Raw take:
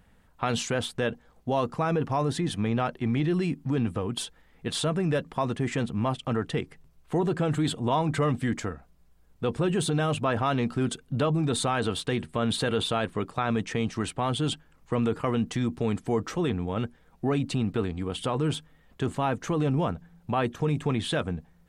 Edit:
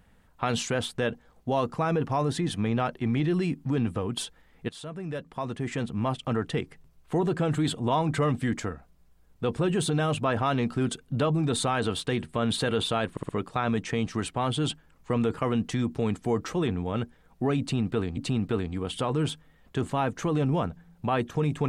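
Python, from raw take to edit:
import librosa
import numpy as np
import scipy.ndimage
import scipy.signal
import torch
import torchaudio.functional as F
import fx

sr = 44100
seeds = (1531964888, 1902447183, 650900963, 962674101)

y = fx.edit(x, sr, fx.fade_in_from(start_s=4.69, length_s=1.52, floor_db=-16.5),
    fx.stutter(start_s=13.11, slice_s=0.06, count=4),
    fx.repeat(start_s=17.42, length_s=0.57, count=2), tone=tone)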